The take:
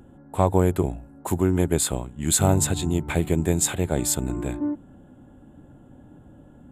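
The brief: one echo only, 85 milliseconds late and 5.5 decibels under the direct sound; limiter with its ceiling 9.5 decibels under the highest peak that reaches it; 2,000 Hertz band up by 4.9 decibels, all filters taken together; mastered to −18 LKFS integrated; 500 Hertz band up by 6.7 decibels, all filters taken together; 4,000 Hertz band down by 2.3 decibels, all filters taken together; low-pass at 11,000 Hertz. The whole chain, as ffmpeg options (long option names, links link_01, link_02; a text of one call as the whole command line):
ffmpeg -i in.wav -af "lowpass=11000,equalizer=frequency=500:width_type=o:gain=8.5,equalizer=frequency=2000:width_type=o:gain=7,equalizer=frequency=4000:width_type=o:gain=-4.5,alimiter=limit=-10.5dB:level=0:latency=1,aecho=1:1:85:0.531,volume=5dB" out.wav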